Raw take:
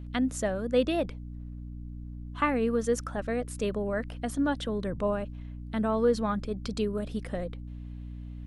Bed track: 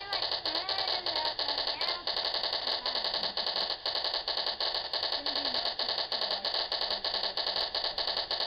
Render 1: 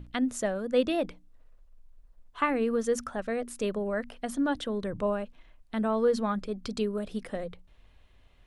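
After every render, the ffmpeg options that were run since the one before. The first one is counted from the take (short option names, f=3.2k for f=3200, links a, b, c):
-af "bandreject=f=60:t=h:w=6,bandreject=f=120:t=h:w=6,bandreject=f=180:t=h:w=6,bandreject=f=240:t=h:w=6,bandreject=f=300:t=h:w=6"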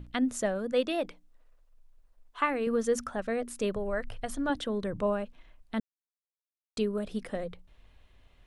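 -filter_complex "[0:a]asettb=1/sr,asplit=3[a][b][c];[a]atrim=end=0.724[d];[b]atrim=start=0.72:end=2.67,asetpts=PTS-STARTPTS,afade=t=in:d=0.004:c=qsin,afade=t=out:st=1.946:d=0.004:c=qsin,equalizer=f=66:w=0.34:g=-13[e];[c]atrim=start=2.666[f];[d][e]acrossfade=d=0.004:c1=hsin:c2=qsin[g];[g][f]acrossfade=d=0.004:c1=qsin:c2=hsin,asettb=1/sr,asplit=3[h][i][j];[h]atrim=end=3.764[k];[i]atrim=start=3.76:end=4.5,asetpts=PTS-STARTPTS,afade=t=in:d=0.004:c=qsin,afade=t=out:st=0.736:d=0.004:c=qsin,lowshelf=f=160:t=q:w=3:g=11[l];[j]atrim=start=4.496[m];[k][l]acrossfade=d=0.004:c1=hsin:c2=qsin[n];[n][m]acrossfade=d=0.004:c1=qsin:c2=hsin,asplit=3[o][p][q];[o]atrim=end=5.8,asetpts=PTS-STARTPTS,afade=t=out:st=5.796:d=0.004:c=hsin[r];[p]atrim=start=5.8:end=6.77,asetpts=PTS-STARTPTS,volume=0[s];[q]atrim=start=6.77,asetpts=PTS-STARTPTS,afade=t=in:d=0.004:c=hsin[t];[r][s][t]concat=n=3:v=0:a=1"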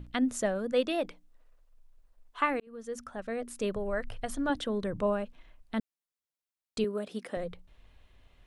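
-filter_complex "[0:a]asettb=1/sr,asplit=3[a][b][c];[a]atrim=end=6.844[d];[b]atrim=start=6.84:end=7.37,asetpts=PTS-STARTPTS,afade=t=in:d=0.004:c=qsin,afade=t=out:st=0.526:d=0.004:c=qsin,highpass=240[e];[c]atrim=start=7.366[f];[d][e]acrossfade=d=0.004:c1=hsin:c2=qsin[g];[g][f]acrossfade=d=0.004:c1=qsin:c2=hsin,asplit=2[h][i];[h]atrim=end=2.6,asetpts=PTS-STARTPTS,afade=t=out:st=2.596:d=0.004:c=hsin[j];[i]atrim=start=2.6,asetpts=PTS-STARTPTS,afade=t=in:d=1.65:c=qsin[k];[j][k]concat=n=2:v=0:a=1"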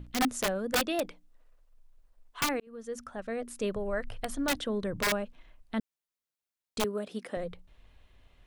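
-af "aeval=exprs='(mod(11.9*val(0)+1,2)-1)/11.9':c=same"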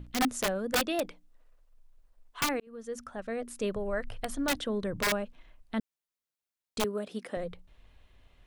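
-af anull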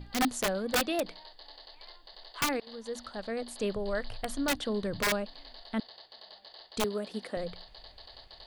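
-filter_complex "[1:a]volume=-19.5dB[a];[0:a][a]amix=inputs=2:normalize=0"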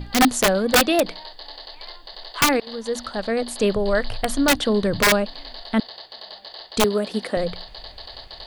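-af "volume=12dB"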